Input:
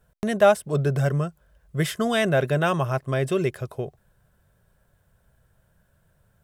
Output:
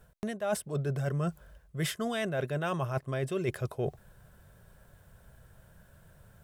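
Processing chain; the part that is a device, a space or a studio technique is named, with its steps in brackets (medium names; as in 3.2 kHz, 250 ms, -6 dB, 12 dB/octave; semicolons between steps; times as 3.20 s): compression on the reversed sound (reverse; compression 16:1, threshold -35 dBFS, peak gain reduction 24.5 dB; reverse); trim +6.5 dB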